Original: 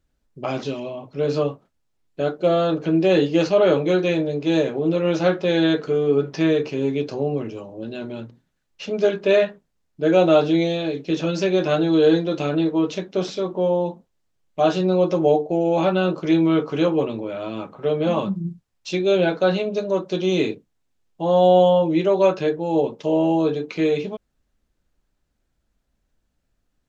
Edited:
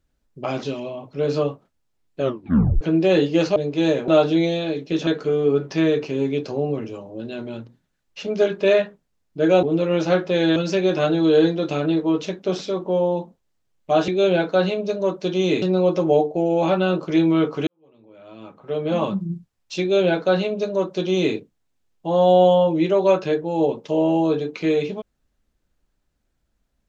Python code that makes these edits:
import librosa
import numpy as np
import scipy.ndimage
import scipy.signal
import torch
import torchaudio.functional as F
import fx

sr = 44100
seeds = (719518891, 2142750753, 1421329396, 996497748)

y = fx.edit(x, sr, fx.tape_stop(start_s=2.21, length_s=0.6),
    fx.cut(start_s=3.56, length_s=0.69),
    fx.swap(start_s=4.77, length_s=0.93, other_s=10.26, other_length_s=0.99),
    fx.fade_in_span(start_s=16.82, length_s=1.35, curve='qua'),
    fx.duplicate(start_s=18.96, length_s=1.54, to_s=14.77), tone=tone)